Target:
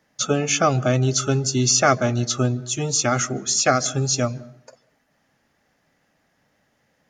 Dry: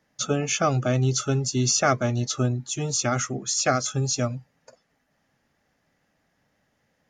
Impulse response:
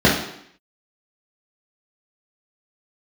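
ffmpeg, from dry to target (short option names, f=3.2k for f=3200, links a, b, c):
-filter_complex "[0:a]lowshelf=f=160:g=-4,asplit=2[a][b];[1:a]atrim=start_sample=2205,adelay=139[c];[b][c]afir=irnorm=-1:irlink=0,volume=-46dB[d];[a][d]amix=inputs=2:normalize=0,volume=4.5dB"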